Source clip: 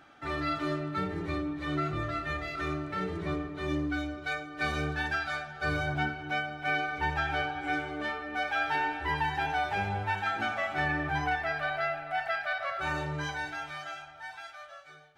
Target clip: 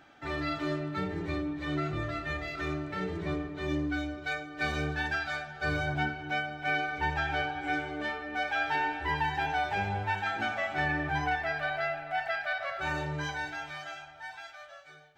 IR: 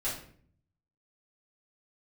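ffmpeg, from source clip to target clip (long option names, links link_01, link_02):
-af "superequalizer=10b=0.631:16b=0.398"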